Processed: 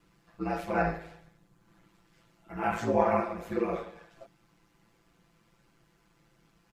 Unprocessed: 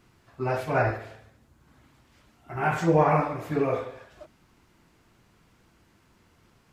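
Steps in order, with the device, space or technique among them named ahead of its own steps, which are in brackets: ring-modulated robot voice (ring modulator 56 Hz; comb 5.9 ms, depth 82%); gain -4 dB

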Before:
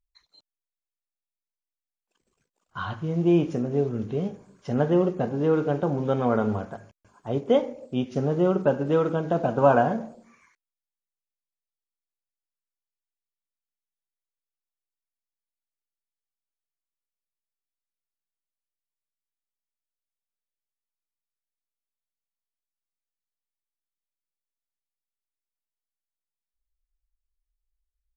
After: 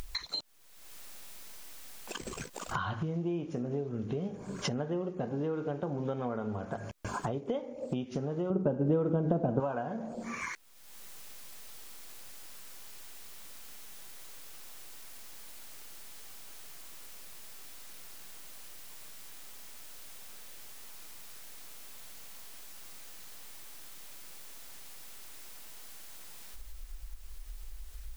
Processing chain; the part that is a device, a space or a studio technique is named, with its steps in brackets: upward and downward compression (upward compressor, threshold -22 dBFS; compressor 8:1, threshold -37 dBFS, peak gain reduction 23.5 dB); 8.5–9.6 tilt shelf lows +9 dB, about 910 Hz; gain +5.5 dB

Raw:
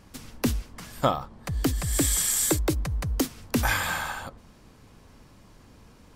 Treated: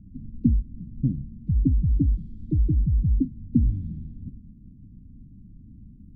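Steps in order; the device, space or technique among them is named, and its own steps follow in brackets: elliptic band-stop 210–4300 Hz, stop band 60 dB; under water (LPF 930 Hz 24 dB/oct; bell 290 Hz +6.5 dB 0.41 oct); gain +8 dB

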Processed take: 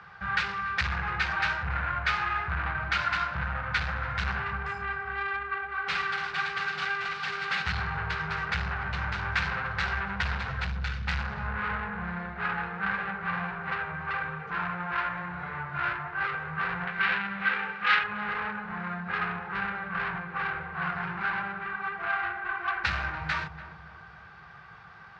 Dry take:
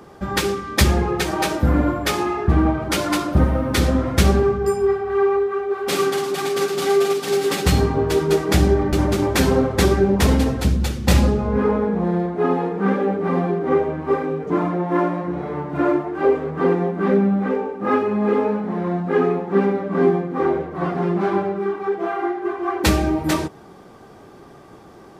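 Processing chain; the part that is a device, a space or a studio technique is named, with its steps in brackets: scooped metal amplifier (tube stage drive 22 dB, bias 0.3; speaker cabinet 85–3500 Hz, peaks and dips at 160 Hz +4 dB, 270 Hz -9 dB, 400 Hz -6 dB, 590 Hz -9 dB, 1500 Hz +9 dB, 3300 Hz -7 dB; passive tone stack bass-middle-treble 10-0-10); 16.87–18.04 weighting filter D; darkening echo 0.288 s, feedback 57%, low-pass 880 Hz, level -10 dB; gain +7 dB

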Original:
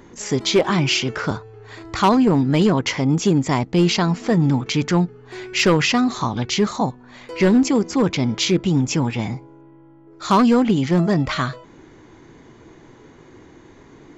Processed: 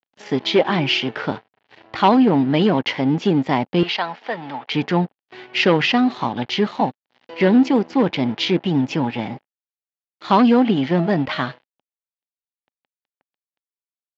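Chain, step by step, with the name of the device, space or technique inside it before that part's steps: blown loudspeaker (crossover distortion -35.5 dBFS; speaker cabinet 150–4300 Hz, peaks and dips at 260 Hz +3 dB, 570 Hz +3 dB, 820 Hz +6 dB, 1200 Hz -3 dB, 1800 Hz +3 dB, 3000 Hz +4 dB); 3.83–4.72 three-band isolator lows -20 dB, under 570 Hz, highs -13 dB, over 5800 Hz

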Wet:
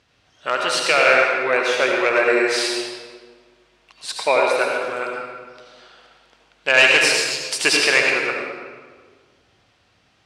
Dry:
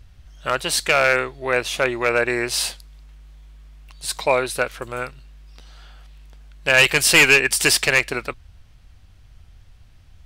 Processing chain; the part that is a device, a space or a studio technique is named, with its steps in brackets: 7.06–7.51 elliptic band-stop 100–4300 Hz; supermarket ceiling speaker (BPF 300–6300 Hz; reverb RT60 1.6 s, pre-delay 67 ms, DRR -0.5 dB)

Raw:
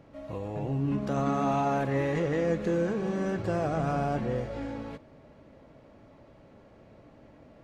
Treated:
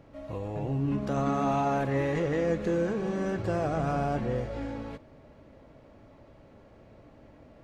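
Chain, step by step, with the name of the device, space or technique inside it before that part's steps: low shelf boost with a cut just above (low shelf 100 Hz +5 dB; bell 170 Hz -2.5 dB 0.77 oct)

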